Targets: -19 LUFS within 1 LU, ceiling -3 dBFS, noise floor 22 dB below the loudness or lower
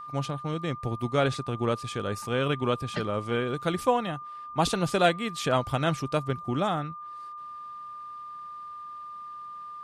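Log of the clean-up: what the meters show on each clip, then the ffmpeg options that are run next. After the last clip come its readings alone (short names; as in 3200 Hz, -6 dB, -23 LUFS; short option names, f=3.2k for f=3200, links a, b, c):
steady tone 1200 Hz; tone level -38 dBFS; loudness -28.5 LUFS; peak -10.5 dBFS; loudness target -19.0 LUFS
-> -af "bandreject=f=1.2k:w=30"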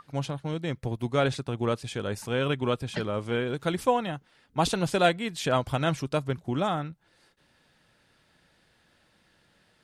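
steady tone none; loudness -28.5 LUFS; peak -10.5 dBFS; loudness target -19.0 LUFS
-> -af "volume=9.5dB,alimiter=limit=-3dB:level=0:latency=1"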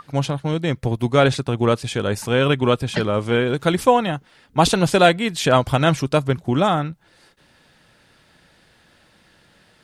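loudness -19.5 LUFS; peak -3.0 dBFS; noise floor -57 dBFS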